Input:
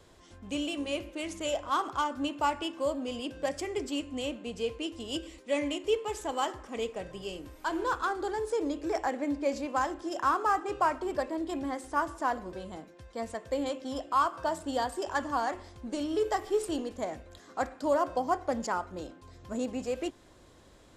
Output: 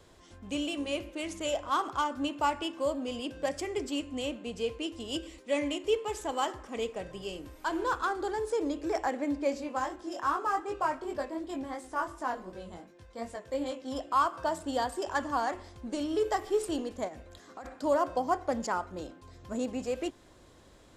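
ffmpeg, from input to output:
-filter_complex "[0:a]asplit=3[s0][s1][s2];[s0]afade=t=out:st=9.52:d=0.02[s3];[s1]flanger=delay=19.5:depth=3.6:speed=2.7,afade=t=in:st=9.52:d=0.02,afade=t=out:st=13.9:d=0.02[s4];[s2]afade=t=in:st=13.9:d=0.02[s5];[s3][s4][s5]amix=inputs=3:normalize=0,asplit=3[s6][s7][s8];[s6]afade=t=out:st=17.07:d=0.02[s9];[s7]acompressor=threshold=0.01:ratio=10:attack=3.2:release=140:knee=1:detection=peak,afade=t=in:st=17.07:d=0.02,afade=t=out:st=17.64:d=0.02[s10];[s8]afade=t=in:st=17.64:d=0.02[s11];[s9][s10][s11]amix=inputs=3:normalize=0"

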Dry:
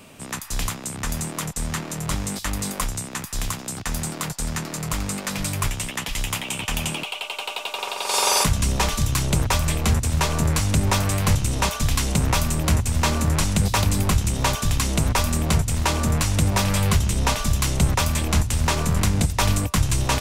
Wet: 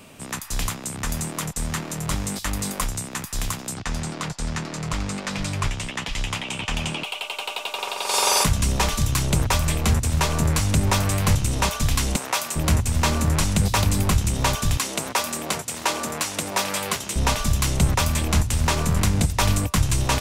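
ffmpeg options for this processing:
-filter_complex "[0:a]asettb=1/sr,asplit=3[s0][s1][s2];[s0]atrim=end=3.744[s3];[s1]atrim=start=3.74:end=7.04,asetpts=PTS-STARTPTS,afade=t=in:d=0.004:c=qsin,afade=t=out:st=3.296:d=0.004:c=qsin,lowpass=6200[s4];[s2]atrim=start=7.036[s5];[s3][s4]acrossfade=d=0.004:c1=hsin:c2=qsin[s6];[s6][s5]acrossfade=d=0.004:c1=qsin:c2=hsin,asettb=1/sr,asplit=3[s7][s8][s9];[s7]atrim=end=12.164[s10];[s8]atrim=start=12.16:end=12.56,asetpts=PTS-STARTPTS,afade=t=in:d=0.004:c=qsin,afade=t=out:st=0.396:d=0.004:c=qsin,highpass=520[s11];[s9]atrim=start=12.556[s12];[s10][s11]acrossfade=d=0.004:c1=hsin:c2=qsin[s13];[s13][s12]acrossfade=d=0.004:c1=qsin:c2=hsin,asettb=1/sr,asplit=3[s14][s15][s16];[s14]atrim=end=14.774[s17];[s15]atrim=start=14.77:end=17.16,asetpts=PTS-STARTPTS,afade=t=in:d=0.004:c=qsin,afade=t=out:st=2.386:d=0.004:c=qsin,highpass=340[s18];[s16]atrim=start=17.156[s19];[s17][s18]acrossfade=d=0.004:c1=hsin:c2=qsin[s20];[s20][s19]acrossfade=d=0.004:c1=qsin:c2=hsin"

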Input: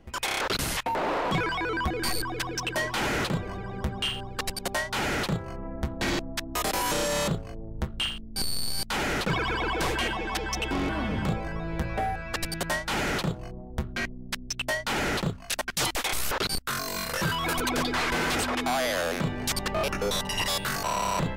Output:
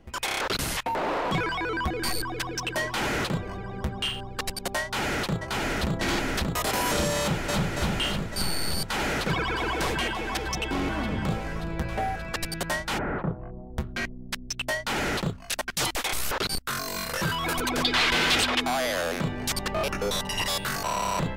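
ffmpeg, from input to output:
-filter_complex "[0:a]asplit=2[s0][s1];[s1]afade=t=in:st=4.83:d=0.01,afade=t=out:st=5.89:d=0.01,aecho=0:1:580|1160|1740|2320|2900|3480|4060|4640|5220|5800|6380|6960:0.891251|0.757563|0.643929|0.547339|0.465239|0.395453|0.336135|0.285715|0.242857|0.206429|0.175464|0.149145[s2];[s0][s2]amix=inputs=2:normalize=0,asplit=2[s3][s4];[s4]afade=t=in:st=7.2:d=0.01,afade=t=out:st=7.7:d=0.01,aecho=0:1:280|560|840|1120|1400|1680|1960|2240|2520:0.891251|0.534751|0.32085|0.19251|0.115506|0.0693037|0.0415822|0.0249493|0.0149696[s5];[s3][s5]amix=inputs=2:normalize=0,asplit=3[s6][s7][s8];[s6]afade=t=out:st=12.97:d=0.02[s9];[s7]lowpass=f=1600:w=0.5412,lowpass=f=1600:w=1.3066,afade=t=in:st=12.97:d=0.02,afade=t=out:st=13.68:d=0.02[s10];[s8]afade=t=in:st=13.68:d=0.02[s11];[s9][s10][s11]amix=inputs=3:normalize=0,asettb=1/sr,asplit=3[s12][s13][s14];[s12]atrim=end=17.844[s15];[s13]atrim=start=17.84:end=18.6,asetpts=PTS-STARTPTS,afade=t=in:d=0.004:c=qsin,afade=t=out:st=0.756:d=0.004:c=qsin,equalizer=f=3400:t=o:w=1.4:g=10.5[s16];[s14]atrim=start=18.596[s17];[s15][s16]acrossfade=d=0.004:c1=hsin:c2=qsin[s18];[s18][s17]acrossfade=d=0.004:c1=qsin:c2=hsin"

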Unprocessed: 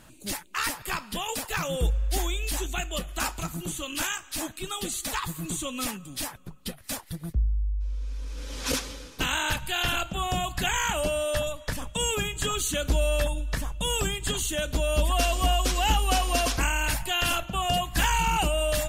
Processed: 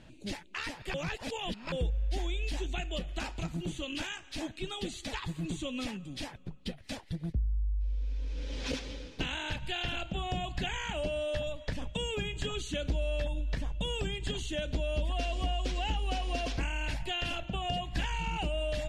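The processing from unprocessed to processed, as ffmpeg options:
-filter_complex "[0:a]asplit=3[s0][s1][s2];[s0]atrim=end=0.942[s3];[s1]atrim=start=0.938:end=1.722,asetpts=PTS-STARTPTS,areverse[s4];[s2]atrim=start=1.718[s5];[s3][s4]acrossfade=d=0.004:c1=hsin:c2=hsin[s6];[s6][s5]acrossfade=d=0.004:c1=hsin:c2=hsin,acompressor=threshold=0.0355:ratio=3,lowpass=3600,equalizer=f=1200:w=1.6:g=-11"

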